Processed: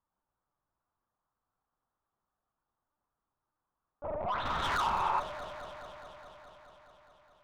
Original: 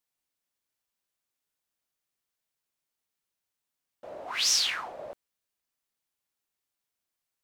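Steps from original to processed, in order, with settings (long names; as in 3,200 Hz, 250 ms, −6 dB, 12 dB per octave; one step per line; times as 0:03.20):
high shelf with overshoot 1,700 Hz −13 dB, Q 3
feedback delay network reverb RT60 0.35 s, low-frequency decay 1×, high-frequency decay 0.4×, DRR 5.5 dB
brickwall limiter −25 dBFS, peak gain reduction 5 dB
linear-prediction vocoder at 8 kHz pitch kept
soft clipping −30.5 dBFS, distortion −15 dB
0:04.45–0:05.00: leveller curve on the samples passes 2
delay that swaps between a low-pass and a high-pass 105 ms, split 910 Hz, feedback 87%, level −9 dB
0:04.88–0:05.17: healed spectral selection 260–2,700 Hz before
level +3.5 dB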